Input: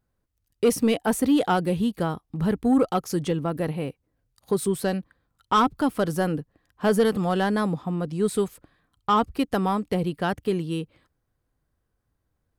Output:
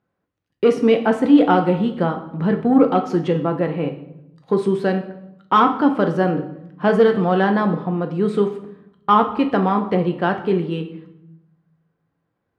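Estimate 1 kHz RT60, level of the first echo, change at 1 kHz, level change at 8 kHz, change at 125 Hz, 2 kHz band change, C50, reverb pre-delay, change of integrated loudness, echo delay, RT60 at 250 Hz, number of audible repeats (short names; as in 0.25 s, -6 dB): 0.80 s, none, +6.5 dB, under -10 dB, +5.0 dB, +6.0 dB, 10.5 dB, 6 ms, +6.0 dB, none, 1.2 s, none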